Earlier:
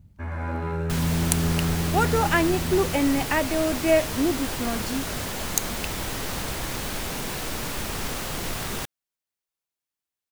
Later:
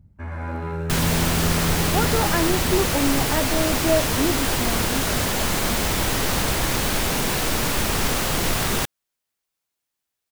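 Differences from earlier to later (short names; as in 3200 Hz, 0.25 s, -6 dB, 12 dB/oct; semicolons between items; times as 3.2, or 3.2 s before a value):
speech: add Gaussian blur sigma 4.9 samples; second sound +8.0 dB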